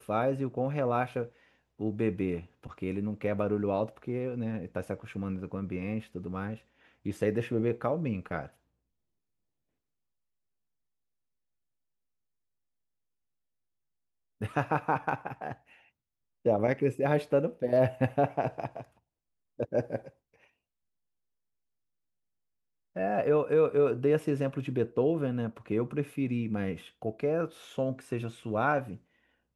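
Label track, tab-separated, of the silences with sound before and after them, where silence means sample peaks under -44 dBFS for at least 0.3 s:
1.280000	1.800000	silence
6.580000	7.060000	silence
8.470000	14.410000	silence
15.540000	16.450000	silence
18.830000	19.590000	silence
20.090000	22.960000	silence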